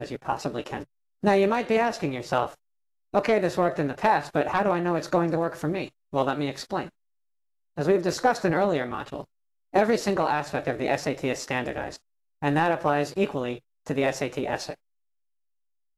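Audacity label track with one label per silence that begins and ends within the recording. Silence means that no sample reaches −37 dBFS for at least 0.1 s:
0.830000	1.240000	silence
2.530000	3.140000	silence
5.880000	6.130000	silence
6.870000	7.780000	silence
9.220000	9.740000	silence
11.960000	12.420000	silence
13.580000	13.870000	silence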